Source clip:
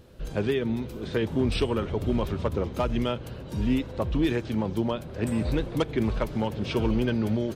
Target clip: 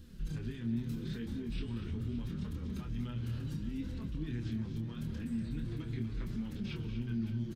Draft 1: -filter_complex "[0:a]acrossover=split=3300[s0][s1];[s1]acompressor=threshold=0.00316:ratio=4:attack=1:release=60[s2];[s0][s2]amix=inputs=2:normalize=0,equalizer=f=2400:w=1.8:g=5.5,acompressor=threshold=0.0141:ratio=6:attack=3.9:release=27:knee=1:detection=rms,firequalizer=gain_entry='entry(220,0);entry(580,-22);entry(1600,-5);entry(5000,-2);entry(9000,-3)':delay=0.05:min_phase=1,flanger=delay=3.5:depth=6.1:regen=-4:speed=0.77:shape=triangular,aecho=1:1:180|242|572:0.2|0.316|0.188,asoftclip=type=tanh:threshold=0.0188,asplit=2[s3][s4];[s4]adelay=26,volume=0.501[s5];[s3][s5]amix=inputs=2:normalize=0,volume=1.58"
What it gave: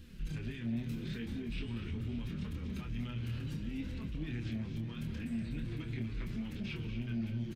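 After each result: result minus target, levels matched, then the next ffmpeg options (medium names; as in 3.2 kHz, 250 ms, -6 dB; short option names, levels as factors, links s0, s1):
saturation: distortion +14 dB; 2 kHz band +5.5 dB
-filter_complex "[0:a]acrossover=split=3300[s0][s1];[s1]acompressor=threshold=0.00316:ratio=4:attack=1:release=60[s2];[s0][s2]amix=inputs=2:normalize=0,equalizer=f=2400:w=1.8:g=5.5,acompressor=threshold=0.0141:ratio=6:attack=3.9:release=27:knee=1:detection=rms,firequalizer=gain_entry='entry(220,0);entry(580,-22);entry(1600,-5);entry(5000,-2);entry(9000,-3)':delay=0.05:min_phase=1,flanger=delay=3.5:depth=6.1:regen=-4:speed=0.77:shape=triangular,aecho=1:1:180|242|572:0.2|0.316|0.188,asoftclip=type=tanh:threshold=0.0473,asplit=2[s3][s4];[s4]adelay=26,volume=0.501[s5];[s3][s5]amix=inputs=2:normalize=0,volume=1.58"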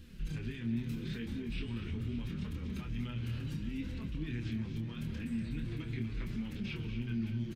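2 kHz band +5.5 dB
-filter_complex "[0:a]acrossover=split=3300[s0][s1];[s1]acompressor=threshold=0.00316:ratio=4:attack=1:release=60[s2];[s0][s2]amix=inputs=2:normalize=0,equalizer=f=2400:w=1.8:g=-3.5,acompressor=threshold=0.0141:ratio=6:attack=3.9:release=27:knee=1:detection=rms,firequalizer=gain_entry='entry(220,0);entry(580,-22);entry(1600,-5);entry(5000,-2);entry(9000,-3)':delay=0.05:min_phase=1,flanger=delay=3.5:depth=6.1:regen=-4:speed=0.77:shape=triangular,aecho=1:1:180|242|572:0.2|0.316|0.188,asoftclip=type=tanh:threshold=0.0473,asplit=2[s3][s4];[s4]adelay=26,volume=0.501[s5];[s3][s5]amix=inputs=2:normalize=0,volume=1.58"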